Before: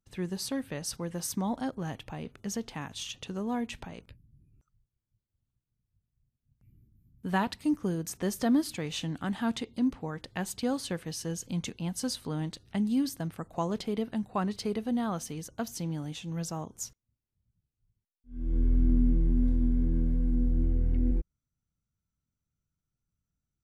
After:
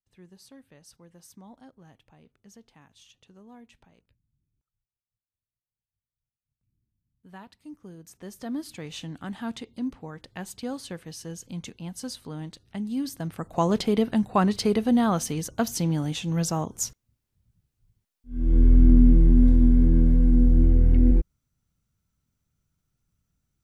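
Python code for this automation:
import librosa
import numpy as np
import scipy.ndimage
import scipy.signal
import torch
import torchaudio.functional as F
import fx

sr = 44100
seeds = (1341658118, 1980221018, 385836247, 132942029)

y = fx.gain(x, sr, db=fx.line((7.52, -17.0), (8.4, -9.0), (8.83, -3.0), (12.87, -3.0), (13.7, 9.0)))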